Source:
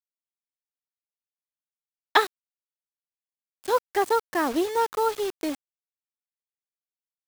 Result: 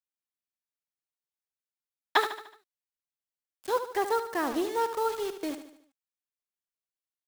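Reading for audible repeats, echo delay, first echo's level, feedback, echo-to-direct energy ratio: 4, 74 ms, −10.0 dB, 48%, −9.0 dB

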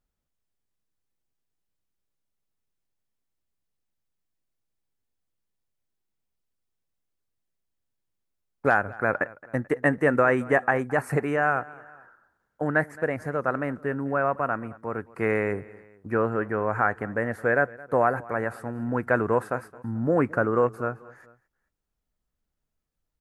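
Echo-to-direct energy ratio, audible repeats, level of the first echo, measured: −20.5 dB, 2, −21.5 dB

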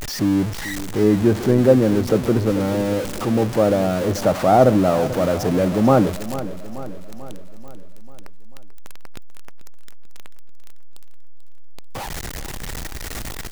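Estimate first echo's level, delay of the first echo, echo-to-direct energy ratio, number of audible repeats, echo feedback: −14.0 dB, 440 ms, −12.5 dB, 5, 56%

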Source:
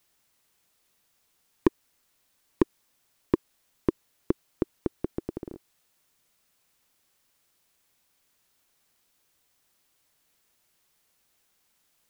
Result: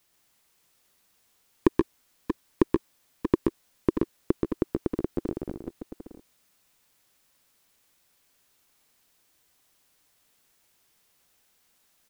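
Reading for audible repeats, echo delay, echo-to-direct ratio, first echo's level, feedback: 2, 128 ms, −1.5 dB, −3.5 dB, repeats not evenly spaced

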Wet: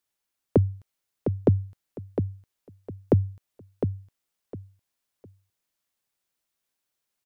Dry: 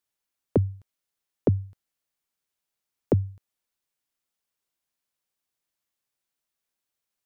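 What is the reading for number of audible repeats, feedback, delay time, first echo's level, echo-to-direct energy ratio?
3, 24%, 707 ms, −7.0 dB, −6.5 dB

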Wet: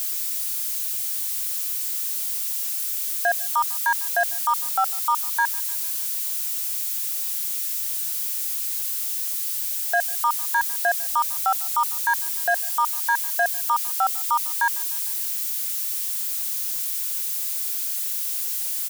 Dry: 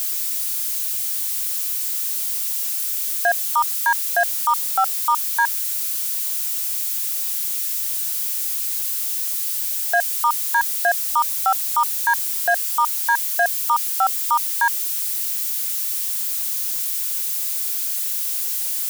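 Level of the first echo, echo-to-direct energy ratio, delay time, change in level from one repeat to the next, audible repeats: −23.5 dB, −22.0 dB, 150 ms, −5.0 dB, 3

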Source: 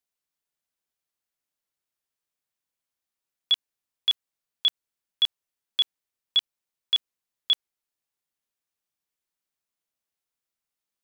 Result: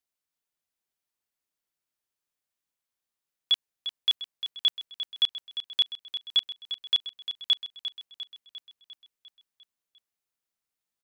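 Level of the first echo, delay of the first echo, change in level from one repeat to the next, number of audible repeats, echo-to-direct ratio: −10.5 dB, 350 ms, −4.5 dB, 6, −8.5 dB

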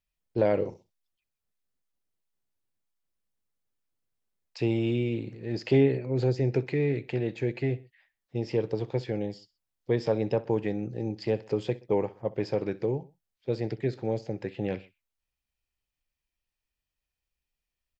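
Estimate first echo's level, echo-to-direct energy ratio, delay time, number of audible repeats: −20.0 dB, −19.0 dB, 63 ms, 2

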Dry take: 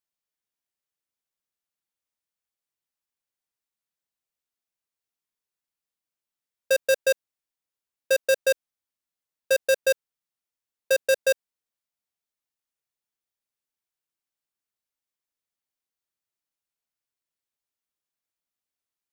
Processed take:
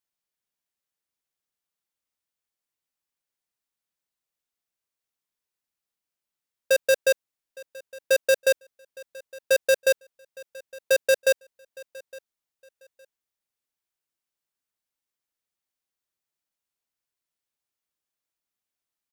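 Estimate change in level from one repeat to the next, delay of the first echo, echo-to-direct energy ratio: −12.5 dB, 862 ms, −22.0 dB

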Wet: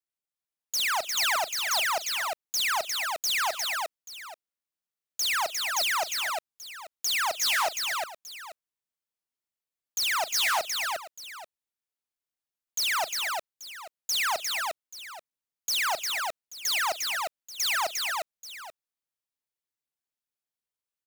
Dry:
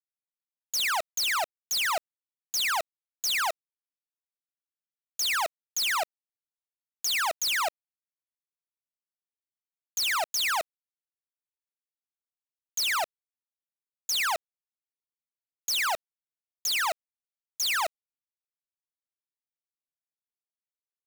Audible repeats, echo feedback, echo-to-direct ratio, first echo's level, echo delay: 4, repeats not evenly spaced, −3.0 dB, −19.0 dB, 41 ms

